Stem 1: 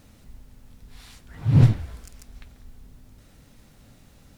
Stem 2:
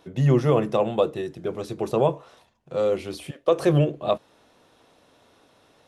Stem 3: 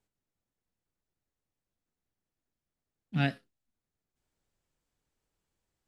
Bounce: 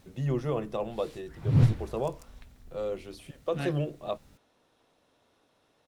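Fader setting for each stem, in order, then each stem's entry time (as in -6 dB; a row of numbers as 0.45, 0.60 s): -6.0, -10.5, -6.5 dB; 0.00, 0.00, 0.40 s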